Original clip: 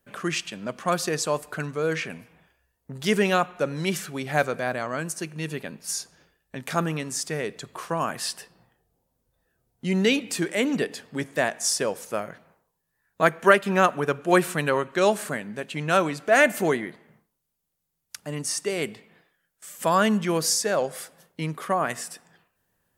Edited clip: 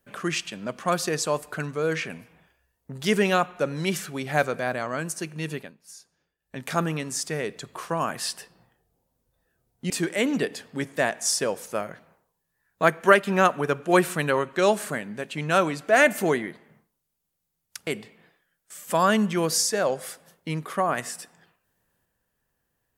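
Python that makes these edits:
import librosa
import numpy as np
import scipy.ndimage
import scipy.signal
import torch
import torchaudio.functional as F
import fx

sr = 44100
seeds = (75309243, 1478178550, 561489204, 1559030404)

y = fx.edit(x, sr, fx.fade_down_up(start_s=5.54, length_s=1.04, db=-16.0, fade_s=0.2),
    fx.cut(start_s=9.9, length_s=0.39),
    fx.cut(start_s=18.26, length_s=0.53), tone=tone)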